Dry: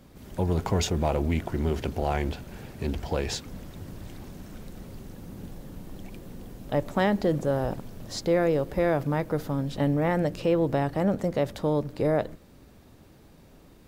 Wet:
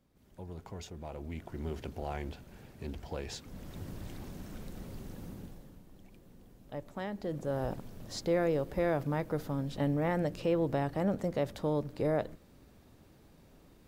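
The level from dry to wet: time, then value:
0:00.98 −19 dB
0:01.67 −11 dB
0:03.33 −11 dB
0:03.75 −2.5 dB
0:05.26 −2.5 dB
0:05.86 −15 dB
0:07.12 −15 dB
0:07.64 −6 dB

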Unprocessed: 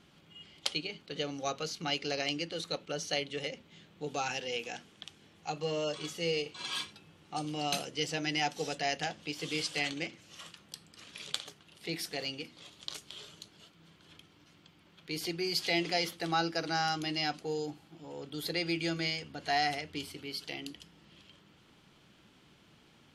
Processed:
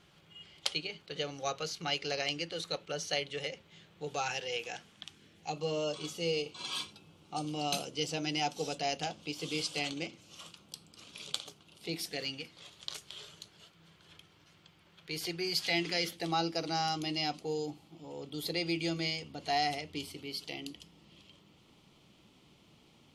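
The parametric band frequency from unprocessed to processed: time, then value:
parametric band −12 dB 0.42 octaves
0:04.78 250 Hz
0:05.60 1,800 Hz
0:12.01 1,800 Hz
0:12.48 260 Hz
0:15.51 260 Hz
0:16.28 1,600 Hz

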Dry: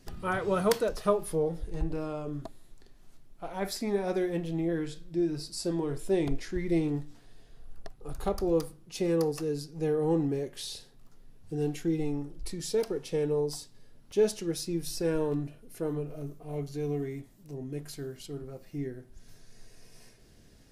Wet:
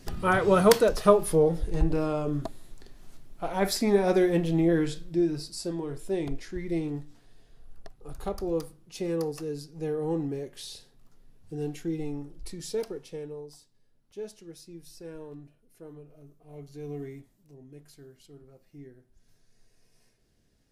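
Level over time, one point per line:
0:04.88 +7 dB
0:05.77 −2.5 dB
0:12.82 −2.5 dB
0:13.47 −13.5 dB
0:16.26 −13.5 dB
0:17.06 −3.5 dB
0:17.56 −11.5 dB

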